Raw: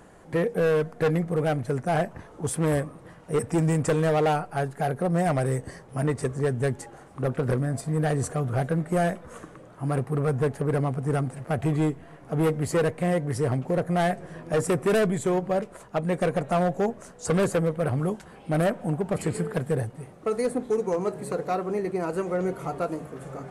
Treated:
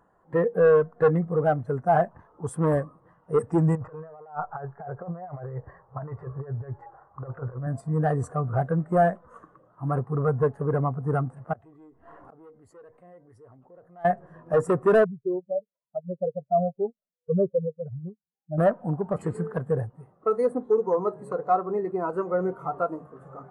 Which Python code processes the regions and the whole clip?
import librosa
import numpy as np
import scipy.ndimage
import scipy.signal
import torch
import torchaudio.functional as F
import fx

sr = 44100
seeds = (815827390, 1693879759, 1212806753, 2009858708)

y = fx.chain(x, sr, fx.lowpass(hz=1700.0, slope=12),
    fx.peak_eq(hz=240.0, db=-11.5, octaves=1.1),
    fx.over_compress(threshold_db=-31.0, ratio=-0.5), at=(3.75, 7.67))
y = fx.chain(y, sr, fx.peak_eq(hz=150.0, db=-11.0, octaves=0.35),
    fx.gate_flip(shuts_db=-35.0, range_db=-27),
    fx.env_flatten(amount_pct=70), at=(11.53, 14.05))
y = fx.chain(y, sr, fx.spec_expand(power=2.4),
    fx.air_absorb(metres=260.0),
    fx.upward_expand(threshold_db=-40.0, expansion=2.5), at=(15.04, 18.58))
y = fx.peak_eq(y, sr, hz=1100.0, db=9.5, octaves=1.2)
y = fx.notch(y, sr, hz=2300.0, q=12.0)
y = fx.spectral_expand(y, sr, expansion=1.5)